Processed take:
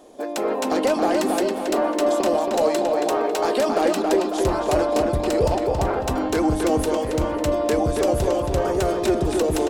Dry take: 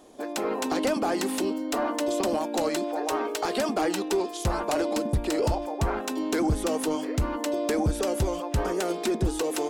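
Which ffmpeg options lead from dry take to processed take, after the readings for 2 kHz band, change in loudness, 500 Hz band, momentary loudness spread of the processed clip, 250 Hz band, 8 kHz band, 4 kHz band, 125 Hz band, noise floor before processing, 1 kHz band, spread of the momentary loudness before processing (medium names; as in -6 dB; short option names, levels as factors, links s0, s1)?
+3.5 dB, +6.0 dB, +8.0 dB, 3 LU, +4.5 dB, +2.0 dB, +2.5 dB, +3.0 dB, -35 dBFS, +6.5 dB, 3 LU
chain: -filter_complex "[0:a]equalizer=f=550:t=o:w=1.1:g=5.5,bandreject=f=50:t=h:w=6,bandreject=f=100:t=h:w=6,bandreject=f=150:t=h:w=6,bandreject=f=200:t=h:w=6,asplit=2[s0][s1];[s1]adelay=274,lowpass=f=3900:p=1,volume=0.708,asplit=2[s2][s3];[s3]adelay=274,lowpass=f=3900:p=1,volume=0.51,asplit=2[s4][s5];[s5]adelay=274,lowpass=f=3900:p=1,volume=0.51,asplit=2[s6][s7];[s7]adelay=274,lowpass=f=3900:p=1,volume=0.51,asplit=2[s8][s9];[s9]adelay=274,lowpass=f=3900:p=1,volume=0.51,asplit=2[s10][s11];[s11]adelay=274,lowpass=f=3900:p=1,volume=0.51,asplit=2[s12][s13];[s13]adelay=274,lowpass=f=3900:p=1,volume=0.51[s14];[s0][s2][s4][s6][s8][s10][s12][s14]amix=inputs=8:normalize=0,volume=1.19"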